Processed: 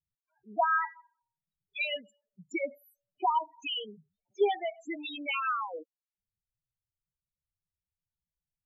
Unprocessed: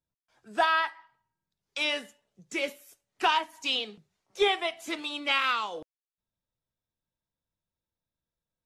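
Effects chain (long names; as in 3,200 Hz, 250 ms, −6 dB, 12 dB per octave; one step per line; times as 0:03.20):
spectral peaks only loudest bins 4
0:00.91–0:02.62: transient designer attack +3 dB, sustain −4 dB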